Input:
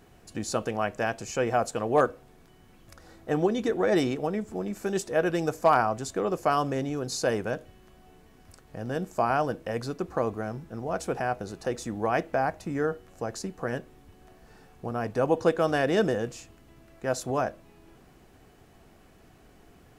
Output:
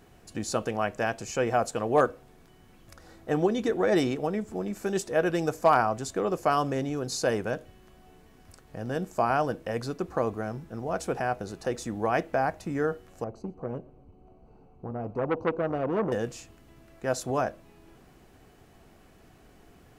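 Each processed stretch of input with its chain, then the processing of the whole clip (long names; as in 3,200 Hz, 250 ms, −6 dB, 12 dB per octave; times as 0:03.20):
0:13.24–0:16.12: moving average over 25 samples + repeating echo 120 ms, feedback 41%, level −24 dB + saturating transformer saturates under 1,000 Hz
whole clip: no processing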